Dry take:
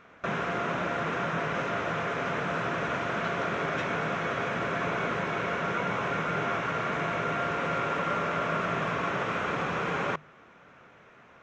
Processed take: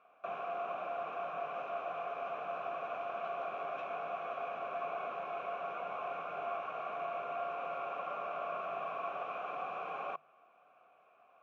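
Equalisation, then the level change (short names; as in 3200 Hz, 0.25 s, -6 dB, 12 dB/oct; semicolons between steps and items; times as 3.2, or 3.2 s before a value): vowel filter a; 0.0 dB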